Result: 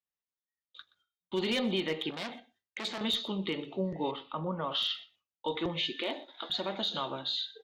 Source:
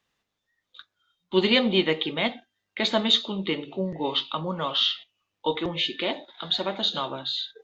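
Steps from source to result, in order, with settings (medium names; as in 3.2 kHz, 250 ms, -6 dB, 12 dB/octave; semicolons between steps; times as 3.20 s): one-sided clip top -15 dBFS, bottom -11.5 dBFS; 5.93–6.50 s: brick-wall FIR high-pass 210 Hz; peak limiter -18.5 dBFS, peak gain reduction 7 dB; 4.11–4.72 s: low-pass 1.6 kHz 12 dB/octave; delay 124 ms -21 dB; gate with hold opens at -55 dBFS; 2.10–3.01 s: transformer saturation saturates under 2.1 kHz; trim -4 dB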